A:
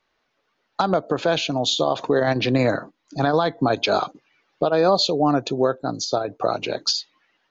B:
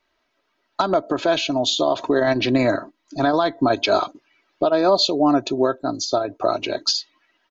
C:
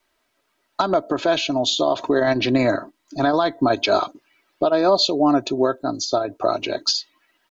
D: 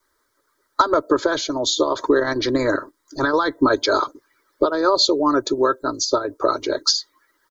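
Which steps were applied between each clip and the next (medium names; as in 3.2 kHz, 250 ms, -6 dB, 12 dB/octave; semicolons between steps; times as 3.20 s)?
comb 3.1 ms, depth 57%
word length cut 12-bit, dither none
static phaser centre 720 Hz, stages 6; harmonic-percussive split percussive +8 dB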